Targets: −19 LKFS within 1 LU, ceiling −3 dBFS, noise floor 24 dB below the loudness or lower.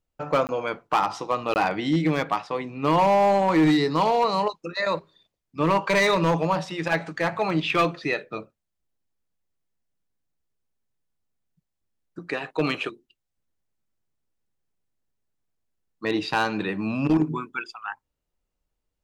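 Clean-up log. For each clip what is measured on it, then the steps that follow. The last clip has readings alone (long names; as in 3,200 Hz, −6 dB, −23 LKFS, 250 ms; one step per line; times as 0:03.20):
share of clipped samples 0.9%; peaks flattened at −14.5 dBFS; number of dropouts 2; longest dropout 19 ms; integrated loudness −24.0 LKFS; sample peak −14.5 dBFS; target loudness −19.0 LKFS
→ clipped peaks rebuilt −14.5 dBFS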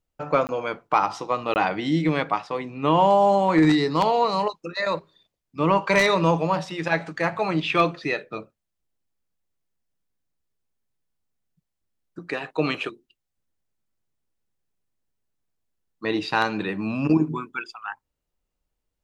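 share of clipped samples 0.0%; number of dropouts 2; longest dropout 19 ms
→ repair the gap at 0:00.47/0:01.54, 19 ms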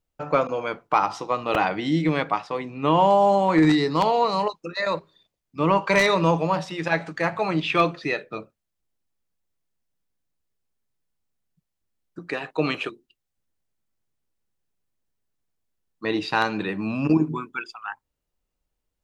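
number of dropouts 0; integrated loudness −23.0 LKFS; sample peak −5.5 dBFS; target loudness −19.0 LKFS
→ level +4 dB
brickwall limiter −3 dBFS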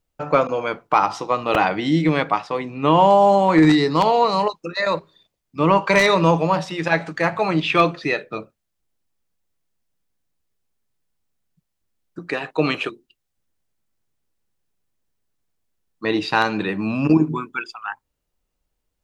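integrated loudness −19.0 LKFS; sample peak −3.0 dBFS; background noise floor −77 dBFS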